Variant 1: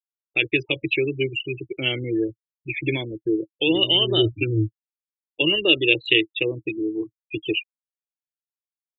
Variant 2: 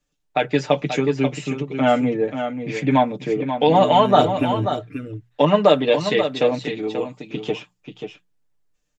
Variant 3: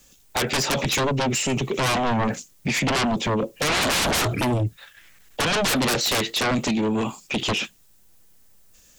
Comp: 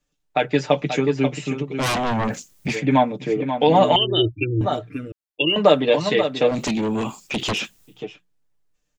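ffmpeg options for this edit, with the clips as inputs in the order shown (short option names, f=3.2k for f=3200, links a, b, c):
-filter_complex "[2:a]asplit=2[a][b];[0:a]asplit=2[c][d];[1:a]asplit=5[e][f][g][h][i];[e]atrim=end=1.83[j];[a]atrim=start=1.79:end=2.76[k];[f]atrim=start=2.72:end=3.962[l];[c]atrim=start=3.958:end=4.612[m];[g]atrim=start=4.608:end=5.122[n];[d]atrim=start=5.118:end=5.562[o];[h]atrim=start=5.558:end=6.63[p];[b]atrim=start=6.47:end=8.02[q];[i]atrim=start=7.86[r];[j][k]acrossfade=d=0.04:c1=tri:c2=tri[s];[s][l]acrossfade=d=0.04:c1=tri:c2=tri[t];[t][m]acrossfade=d=0.004:c1=hsin:c2=hsin[u];[u][n]acrossfade=d=0.004:c1=hsin:c2=hsin[v];[v][o]acrossfade=d=0.004:c1=hsin:c2=hsin[w];[w][p]acrossfade=d=0.004:c1=hsin:c2=hsin[x];[x][q]acrossfade=d=0.16:c1=tri:c2=tri[y];[y][r]acrossfade=d=0.16:c1=tri:c2=tri"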